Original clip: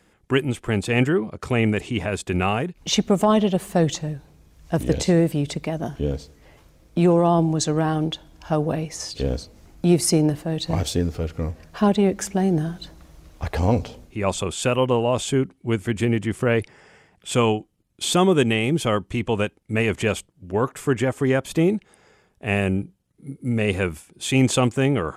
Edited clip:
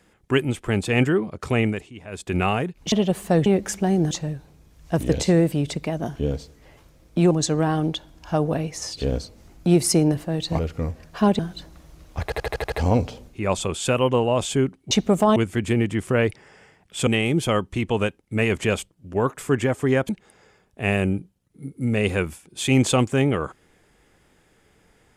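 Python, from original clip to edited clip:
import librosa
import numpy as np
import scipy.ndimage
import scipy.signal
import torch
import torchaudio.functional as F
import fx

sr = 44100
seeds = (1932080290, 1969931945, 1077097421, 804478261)

y = fx.edit(x, sr, fx.fade_down_up(start_s=1.58, length_s=0.79, db=-16.0, fade_s=0.32),
    fx.move(start_s=2.92, length_s=0.45, to_s=15.68),
    fx.cut(start_s=7.11, length_s=0.38),
    fx.cut(start_s=10.77, length_s=0.42),
    fx.move(start_s=11.99, length_s=0.65, to_s=3.91),
    fx.stutter(start_s=13.49, slice_s=0.08, count=7),
    fx.cut(start_s=17.39, length_s=1.06),
    fx.cut(start_s=21.47, length_s=0.26), tone=tone)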